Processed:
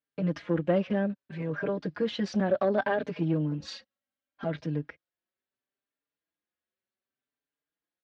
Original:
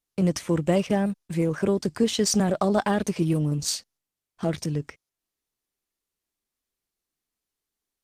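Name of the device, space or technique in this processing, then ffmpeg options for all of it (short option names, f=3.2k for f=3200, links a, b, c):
barber-pole flanger into a guitar amplifier: -filter_complex "[0:a]asplit=2[a][b];[b]adelay=4.6,afreqshift=0.68[c];[a][c]amix=inputs=2:normalize=1,asoftclip=type=tanh:threshold=-15.5dB,highpass=97,equalizer=f=280:t=q:w=4:g=4,equalizer=f=570:t=q:w=4:g=7,equalizer=f=1.6k:t=q:w=4:g=8,lowpass=f=3.8k:w=0.5412,lowpass=f=3.8k:w=1.3066,asettb=1/sr,asplit=3[d][e][f];[d]atrim=end=3.604[g];[e]atrim=start=3.6:end=4.44,asetpts=PTS-STARTPTS,afade=t=in:d=0.004:c=qsin,afade=t=out:st=0.836:d=0.004:c=qsin,aecho=1:1:3.7:0.77,atrim=end_sample=37044[h];[f]atrim=start=4.436[i];[g][h]acrossfade=d=0.004:c1=hsin:c2=qsin[j];[j][i]acrossfade=d=0.004:c1=qsin:c2=hsin,volume=-3dB"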